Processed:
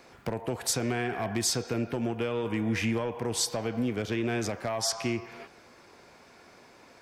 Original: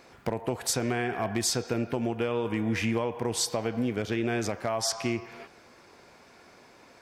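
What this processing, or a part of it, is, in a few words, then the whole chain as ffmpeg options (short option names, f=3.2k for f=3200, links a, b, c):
one-band saturation: -filter_complex "[0:a]acrossover=split=250|2100[a][b][c];[b]asoftclip=type=tanh:threshold=-25.5dB[d];[a][d][c]amix=inputs=3:normalize=0"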